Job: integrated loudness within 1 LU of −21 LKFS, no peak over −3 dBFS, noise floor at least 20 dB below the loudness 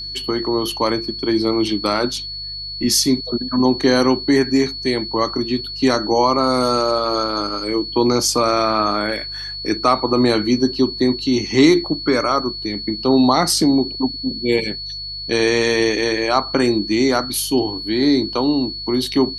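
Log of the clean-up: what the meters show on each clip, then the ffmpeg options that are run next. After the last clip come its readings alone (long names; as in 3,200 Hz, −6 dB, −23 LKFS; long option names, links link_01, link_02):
mains hum 50 Hz; hum harmonics up to 150 Hz; level of the hum −38 dBFS; interfering tone 4,400 Hz; level of the tone −27 dBFS; integrated loudness −18.0 LKFS; sample peak −2.0 dBFS; target loudness −21.0 LKFS
→ -af "bandreject=frequency=50:width_type=h:width=4,bandreject=frequency=100:width_type=h:width=4,bandreject=frequency=150:width_type=h:width=4"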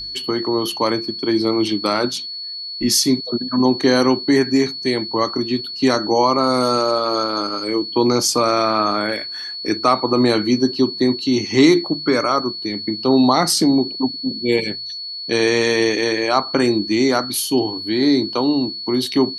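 mains hum none found; interfering tone 4,400 Hz; level of the tone −27 dBFS
→ -af "bandreject=frequency=4400:width=30"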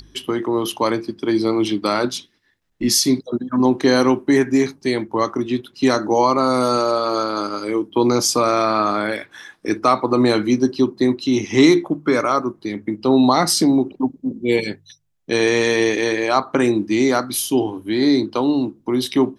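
interfering tone none found; integrated loudness −18.5 LKFS; sample peak −2.5 dBFS; target loudness −21.0 LKFS
→ -af "volume=-2.5dB"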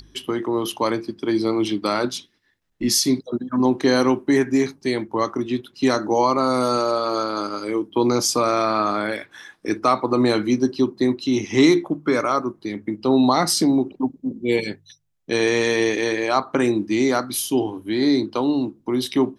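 integrated loudness −21.0 LKFS; sample peak −5.0 dBFS; background noise floor −63 dBFS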